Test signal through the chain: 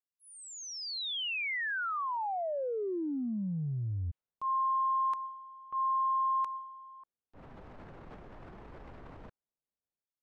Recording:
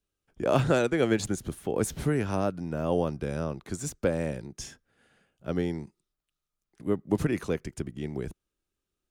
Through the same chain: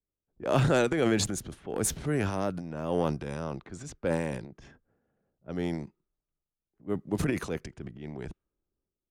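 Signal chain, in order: low-pass opened by the level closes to 660 Hz, open at -26 dBFS; transient shaper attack -4 dB, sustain +9 dB; upward expander 1.5:1, over -37 dBFS

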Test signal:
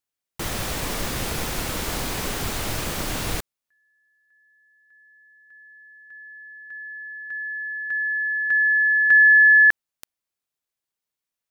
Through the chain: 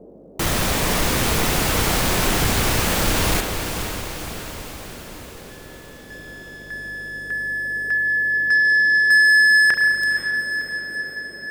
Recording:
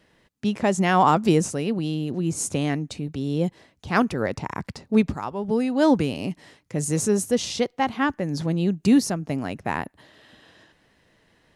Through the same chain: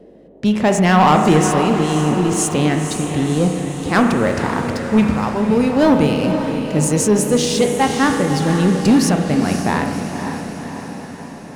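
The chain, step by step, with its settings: hum 50 Hz, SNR 31 dB; spring tank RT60 1.3 s, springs 33 ms, chirp 80 ms, DRR 6 dB; sample leveller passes 2; on a send: diffused feedback echo 0.523 s, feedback 60%, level -7.5 dB; on the sum: band noise 170–580 Hz -45 dBFS

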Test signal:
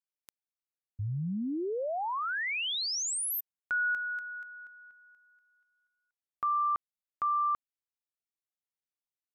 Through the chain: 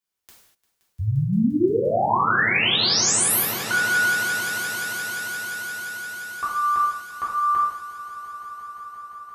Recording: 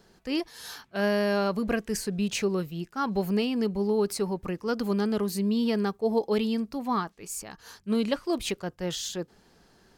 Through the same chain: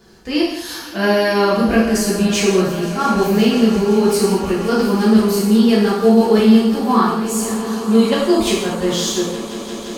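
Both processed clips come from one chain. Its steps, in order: on a send: swelling echo 0.174 s, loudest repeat 5, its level -18 dB; on the sum: non-linear reverb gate 0.27 s falling, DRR -7 dB; gain +4.5 dB

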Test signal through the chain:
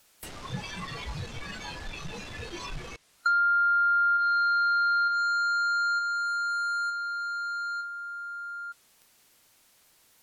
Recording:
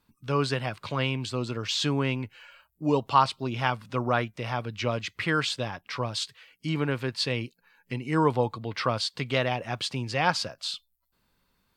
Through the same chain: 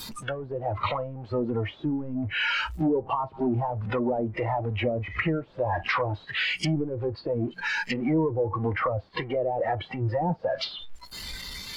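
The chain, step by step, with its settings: power-law curve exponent 0.35; treble ducked by the level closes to 560 Hz, closed at -12.5 dBFS; compressor 2:1, threshold -25 dBFS; spectral noise reduction 16 dB

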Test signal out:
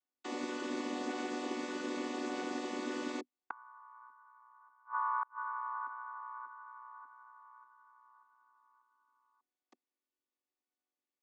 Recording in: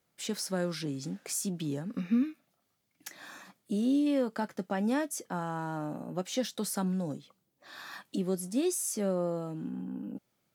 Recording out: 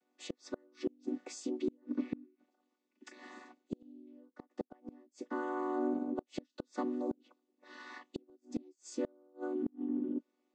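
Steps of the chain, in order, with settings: chord vocoder minor triad, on B3; flipped gate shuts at -28 dBFS, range -34 dB; gain +4.5 dB

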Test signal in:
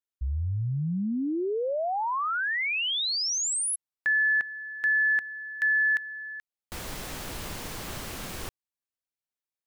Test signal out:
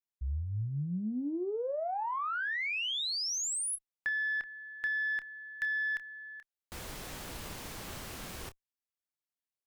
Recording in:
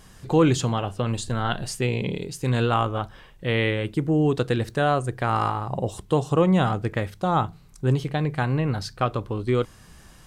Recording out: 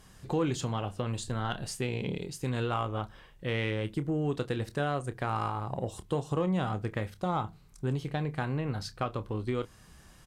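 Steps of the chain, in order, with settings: compressor 2:1, threshold -24 dBFS; added harmonics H 4 -31 dB, 7 -39 dB, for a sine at -13 dBFS; doubler 28 ms -12 dB; gain -5.5 dB

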